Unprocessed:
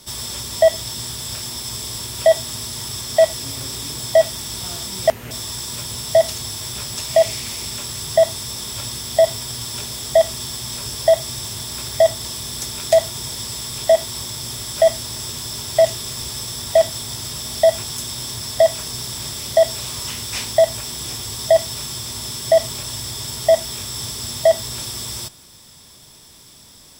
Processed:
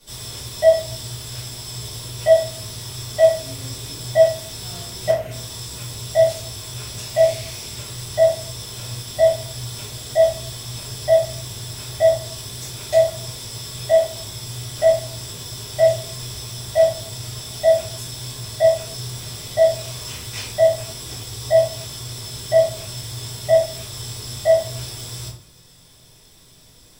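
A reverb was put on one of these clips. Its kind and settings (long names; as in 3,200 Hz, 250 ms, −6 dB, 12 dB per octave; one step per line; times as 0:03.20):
rectangular room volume 44 cubic metres, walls mixed, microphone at 2.3 metres
level −15.5 dB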